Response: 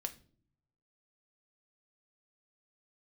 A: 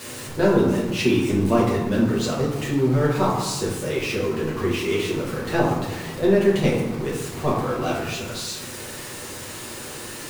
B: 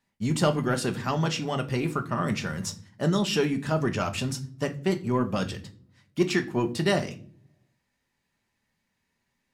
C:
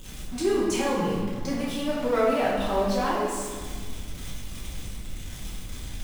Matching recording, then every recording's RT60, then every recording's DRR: B; 1.1 s, non-exponential decay, 1.7 s; −6.0, 6.0, −8.0 decibels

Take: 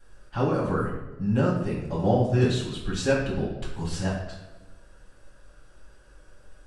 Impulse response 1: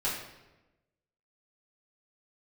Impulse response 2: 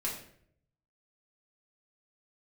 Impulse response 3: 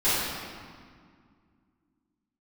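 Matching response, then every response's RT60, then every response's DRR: 1; 1.1, 0.65, 2.0 seconds; −8.5, −5.5, −16.0 decibels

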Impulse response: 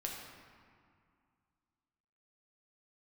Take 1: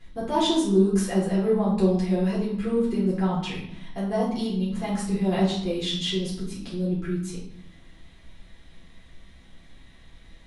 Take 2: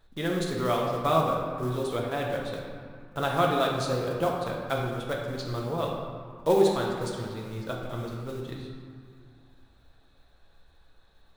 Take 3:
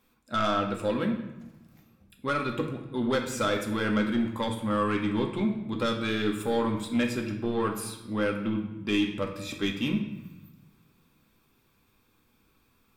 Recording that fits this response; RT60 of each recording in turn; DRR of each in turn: 2; 0.75, 2.2, 1.0 seconds; −8.0, −1.5, 1.5 decibels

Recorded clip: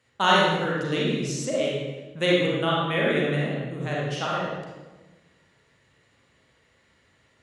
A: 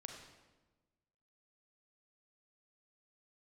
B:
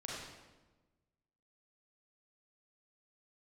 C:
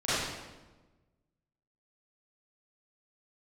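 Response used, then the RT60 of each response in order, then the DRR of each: B; 1.2, 1.2, 1.2 seconds; 2.0, −5.5, −15.0 decibels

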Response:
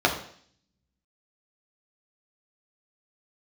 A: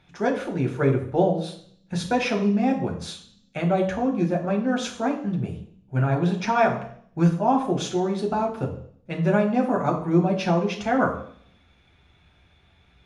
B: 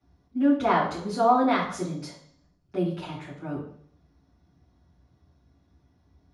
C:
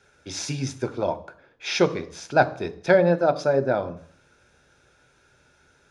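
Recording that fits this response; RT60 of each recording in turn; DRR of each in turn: A; 0.55, 0.55, 0.55 seconds; −0.5, −10.0, 9.5 decibels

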